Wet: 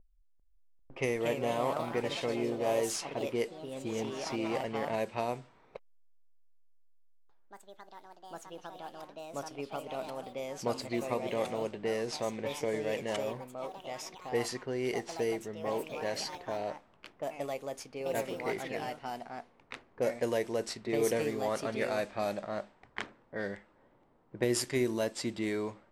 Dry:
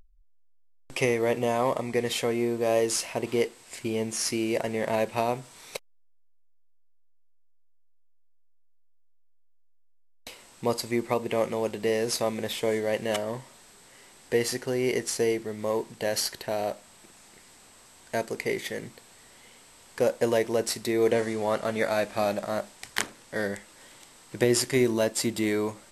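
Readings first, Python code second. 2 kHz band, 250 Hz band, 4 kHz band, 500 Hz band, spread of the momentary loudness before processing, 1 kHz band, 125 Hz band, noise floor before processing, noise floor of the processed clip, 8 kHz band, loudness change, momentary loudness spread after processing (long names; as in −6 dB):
−6.5 dB, −6.5 dB, −7.5 dB, −6.0 dB, 11 LU, −4.0 dB, −6.0 dB, −57 dBFS, −65 dBFS, −9.5 dB, −7.0 dB, 15 LU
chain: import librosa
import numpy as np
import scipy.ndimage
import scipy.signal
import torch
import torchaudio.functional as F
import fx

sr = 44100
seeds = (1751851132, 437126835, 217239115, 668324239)

y = fx.env_lowpass(x, sr, base_hz=670.0, full_db=-20.5)
y = fx.echo_pitch(y, sr, ms=396, semitones=3, count=3, db_per_echo=-6.0)
y = F.gain(torch.from_numpy(y), -7.0).numpy()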